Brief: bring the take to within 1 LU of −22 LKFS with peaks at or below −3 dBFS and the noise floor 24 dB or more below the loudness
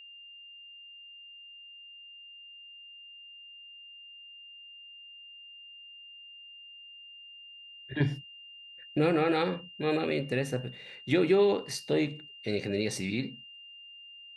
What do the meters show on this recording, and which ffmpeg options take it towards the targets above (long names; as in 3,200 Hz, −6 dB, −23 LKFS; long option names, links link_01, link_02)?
interfering tone 2,800 Hz; level of the tone −47 dBFS; integrated loudness −30.0 LKFS; sample peak −12.5 dBFS; target loudness −22.0 LKFS
→ -af "bandreject=frequency=2800:width=30"
-af "volume=8dB"